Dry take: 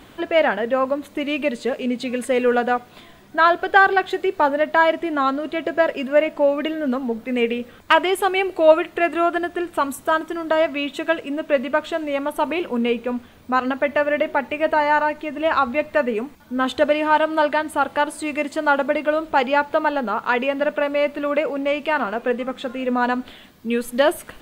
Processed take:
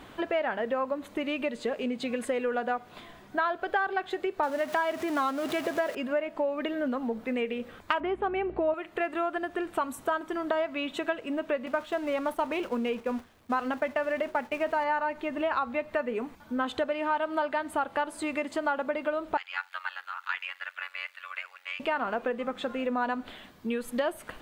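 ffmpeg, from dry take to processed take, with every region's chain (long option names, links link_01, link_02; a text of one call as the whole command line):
ffmpeg -i in.wav -filter_complex "[0:a]asettb=1/sr,asplit=3[link_01][link_02][link_03];[link_01]atrim=end=4.434[link_04];[link_02]atrim=start=4.43:end=5.95,asetpts=PTS-STARTPTS,afade=type=in:duration=0.004:curve=qsin,afade=type=out:start_time=1.516:duration=0.004:curve=qsin,aeval=exprs='val(0)+0.5*0.0422*sgn(val(0))':channel_layout=same,highpass=94,highshelf=frequency=4600:gain=6[link_05];[link_03]atrim=start=5.946[link_06];[link_04][link_05]acrossfade=duration=0.004:curve1=hsin:curve2=qsin[link_07];[link_07][link_06]acrossfade=duration=0.004:curve1=qsin:curve2=hsin,asettb=1/sr,asplit=3[link_08][link_09][link_10];[link_08]atrim=end=8.004[link_11];[link_09]atrim=start=8:end=8.74,asetpts=PTS-STARTPTS,afade=type=in:duration=0.004:curve=qsin,afade=type=out:start_time=0.736:duration=0.004:curve=qsin,lowpass=2100,equalizer=frequency=220:width_type=o:width=0.98:gain=12.5,aeval=exprs='val(0)+0.0141*(sin(2*PI*60*n/s)+sin(2*PI*2*60*n/s)/2+sin(2*PI*3*60*n/s)/3+sin(2*PI*4*60*n/s)/4+sin(2*PI*5*60*n/s)/5)':channel_layout=same[link_12];[link_10]atrim=start=8.736[link_13];[link_11][link_12]acrossfade=duration=0.004:curve1=hsin:curve2=qsin[link_14];[link_14][link_13]acrossfade=duration=0.004:curve1=qsin:curve2=hsin,asettb=1/sr,asplit=3[link_15][link_16][link_17];[link_15]atrim=end=11.664[link_18];[link_16]atrim=start=11.66:end=14.84,asetpts=PTS-STARTPTS,afade=type=in:duration=0.004:curve=qsin,afade=type=out:start_time=3.176:duration=0.004:curve=qsin,aeval=exprs='val(0)+0.5*0.0237*sgn(val(0))':channel_layout=same,agate=range=-33dB:threshold=-25dB:ratio=3:release=100:detection=peak[link_19];[link_17]atrim=start=14.836[link_20];[link_18][link_19]acrossfade=duration=0.004:curve1=hsin:curve2=qsin[link_21];[link_21][link_20]acrossfade=duration=0.004:curve1=qsin:curve2=hsin,asettb=1/sr,asplit=3[link_22][link_23][link_24];[link_22]atrim=end=19.374[link_25];[link_23]atrim=start=19.37:end=21.8,asetpts=PTS-STARTPTS,afade=type=in:duration=0.004:curve=qsin,afade=type=out:start_time=2.426:duration=0.004:curve=qsin,highpass=frequency=1500:width=0.5412,highpass=frequency=1500:width=1.3066,tremolo=f=91:d=0.974[link_26];[link_24]atrim=start=21.796[link_27];[link_25][link_26]acrossfade=duration=0.004:curve1=hsin:curve2=qsin[link_28];[link_28][link_27]acrossfade=duration=0.004:curve1=qsin:curve2=hsin,highshelf=frequency=9100:gain=-4.5,acompressor=threshold=-24dB:ratio=6,equalizer=frequency=1000:width_type=o:width=2:gain=4,volume=-4.5dB" out.wav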